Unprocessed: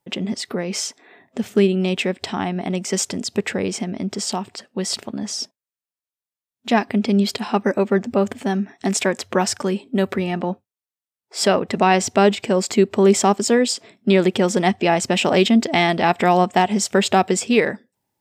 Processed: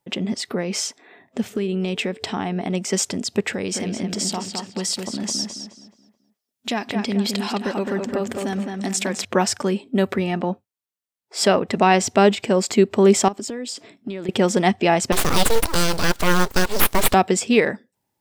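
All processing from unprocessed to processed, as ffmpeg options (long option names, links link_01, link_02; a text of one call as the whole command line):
ffmpeg -i in.wav -filter_complex "[0:a]asettb=1/sr,asplit=3[link_01][link_02][link_03];[link_01]atrim=end=1.534[link_04];[link_02]atrim=start=1.53:end=2.74,asetpts=PTS-STARTPTS,afade=type=in:duration=0.004:curve=qsin,afade=type=out:start_time=1.206:duration=0.004:curve=qsin,acompressor=threshold=-19dB:ratio=10:attack=3.2:release=140:knee=1:detection=peak,aeval=exprs='val(0)+0.00794*sin(2*PI*440*n/s)':channel_layout=same[link_05];[link_03]atrim=start=2.736[link_06];[link_04][link_05]acrossfade=duration=0.004:curve1=hsin:curve2=qsin[link_07];[link_07][link_06]acrossfade=duration=0.004:curve1=qsin:curve2=hsin,asettb=1/sr,asplit=3[link_08][link_09][link_10];[link_08]atrim=end=3.534[link_11];[link_09]atrim=start=3.53:end=9.25,asetpts=PTS-STARTPTS,afade=type=in:duration=0.004:curve=qsin,afade=type=out:start_time=5.716:duration=0.004:curve=qsin,highshelf=frequency=3000:gain=8,acompressor=threshold=-23dB:ratio=2.5:attack=3.2:release=140:knee=1:detection=peak,asplit=2[link_12][link_13];[link_13]adelay=213,lowpass=frequency=3300:poles=1,volume=-4dB,asplit=2[link_14][link_15];[link_15]adelay=213,lowpass=frequency=3300:poles=1,volume=0.38,asplit=2[link_16][link_17];[link_17]adelay=213,lowpass=frequency=3300:poles=1,volume=0.38,asplit=2[link_18][link_19];[link_19]adelay=213,lowpass=frequency=3300:poles=1,volume=0.38,asplit=2[link_20][link_21];[link_21]adelay=213,lowpass=frequency=3300:poles=1,volume=0.38[link_22];[link_12][link_14][link_16][link_18][link_20][link_22]amix=inputs=6:normalize=0,atrim=end_sample=252252[link_23];[link_10]atrim=start=9.246[link_24];[link_11][link_23]acrossfade=duration=0.004:curve1=hsin:curve2=qsin[link_25];[link_25][link_24]acrossfade=duration=0.004:curve1=qsin:curve2=hsin,asettb=1/sr,asplit=3[link_26][link_27][link_28];[link_26]atrim=end=13.284[link_29];[link_27]atrim=start=13.28:end=14.29,asetpts=PTS-STARTPTS,afade=type=in:duration=0.004:curve=qsin,afade=type=out:start_time=1.006:duration=0.004:curve=qsin,equalizer=frequency=290:width=5.3:gain=8,acompressor=threshold=-25dB:ratio=20:attack=3.2:release=140:knee=1:detection=peak[link_30];[link_28]atrim=start=14.286[link_31];[link_29][link_30]acrossfade=duration=0.004:curve1=hsin:curve2=qsin[link_32];[link_32][link_31]acrossfade=duration=0.004:curve1=qsin:curve2=hsin,asettb=1/sr,asplit=3[link_33][link_34][link_35];[link_33]atrim=end=15.124[link_36];[link_34]atrim=start=15.12:end=17.14,asetpts=PTS-STARTPTS,afade=type=in:duration=0.004:curve=qsin,afade=type=out:start_time=2.016:duration=0.004:curve=qsin,highshelf=frequency=3500:width_type=q:width=3:gain=7,aeval=exprs='abs(val(0))':channel_layout=same,acrusher=bits=4:mode=log:mix=0:aa=0.000001[link_37];[link_35]atrim=start=17.136[link_38];[link_36][link_37]acrossfade=duration=0.004:curve1=hsin:curve2=qsin[link_39];[link_39][link_38]acrossfade=duration=0.004:curve1=qsin:curve2=hsin" out.wav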